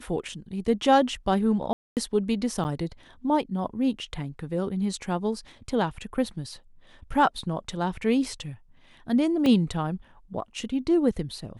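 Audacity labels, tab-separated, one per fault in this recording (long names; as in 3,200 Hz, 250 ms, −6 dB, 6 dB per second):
1.730000	1.970000	drop-out 238 ms
2.640000	2.650000	drop-out 9.4 ms
9.460000	9.460000	drop-out 2.4 ms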